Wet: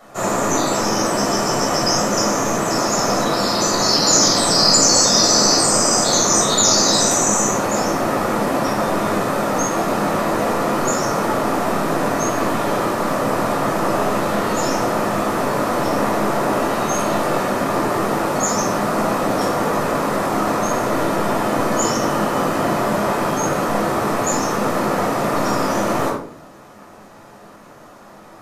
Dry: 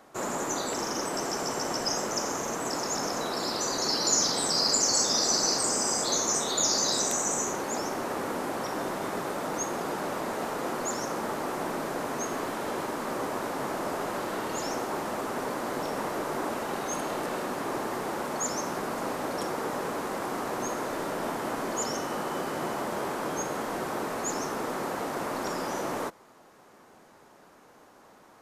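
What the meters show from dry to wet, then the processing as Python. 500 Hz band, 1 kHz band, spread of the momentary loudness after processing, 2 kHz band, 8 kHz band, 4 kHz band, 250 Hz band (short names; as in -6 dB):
+12.5 dB, +12.5 dB, 7 LU, +11.5 dB, +10.5 dB, +11.5 dB, +14.0 dB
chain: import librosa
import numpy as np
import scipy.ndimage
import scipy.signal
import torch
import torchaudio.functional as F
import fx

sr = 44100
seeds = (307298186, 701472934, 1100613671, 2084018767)

y = fx.room_shoebox(x, sr, seeds[0], volume_m3=630.0, walls='furnished', distance_m=6.4)
y = F.gain(torch.from_numpy(y), 3.5).numpy()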